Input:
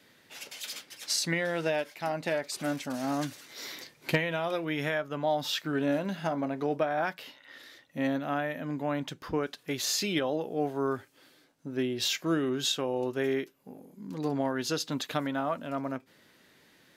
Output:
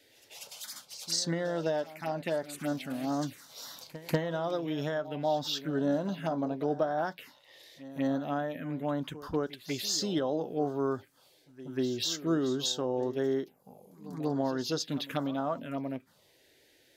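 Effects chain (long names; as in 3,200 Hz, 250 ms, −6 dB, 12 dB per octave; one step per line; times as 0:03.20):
phaser swept by the level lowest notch 180 Hz, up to 2,400 Hz, full sweep at −27 dBFS
echo ahead of the sound 191 ms −16 dB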